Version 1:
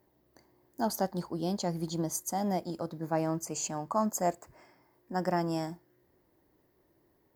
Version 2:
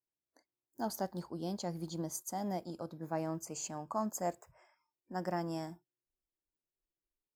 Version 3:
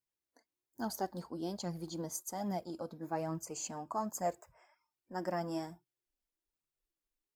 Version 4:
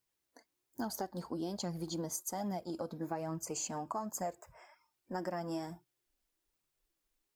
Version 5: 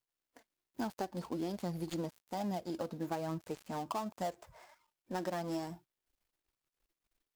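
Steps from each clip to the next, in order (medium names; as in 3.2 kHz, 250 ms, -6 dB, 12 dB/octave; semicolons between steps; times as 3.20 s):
spectral noise reduction 27 dB; trim -6.5 dB
flange 1.2 Hz, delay 0.6 ms, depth 4 ms, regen +32%; trim +4 dB
compression 6:1, threshold -43 dBFS, peak gain reduction 13 dB; trim +7.5 dB
dead-time distortion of 0.11 ms; trim +1 dB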